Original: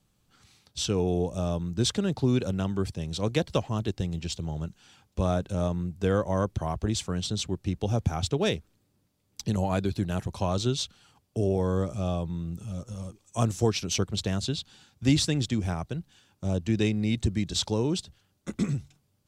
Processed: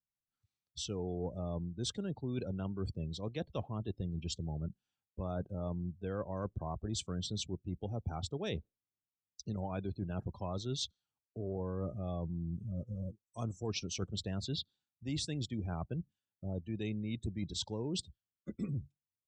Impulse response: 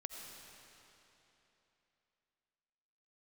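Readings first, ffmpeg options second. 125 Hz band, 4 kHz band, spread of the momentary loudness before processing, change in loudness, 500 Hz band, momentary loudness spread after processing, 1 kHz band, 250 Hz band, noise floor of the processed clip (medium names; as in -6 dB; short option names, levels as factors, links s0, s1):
-10.0 dB, -9.5 dB, 10 LU, -11.0 dB, -12.0 dB, 6 LU, -11.5 dB, -11.0 dB, under -85 dBFS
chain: -af "afftdn=nr=33:nf=-38,areverse,acompressor=threshold=0.0224:ratio=8,areverse,volume=0.841"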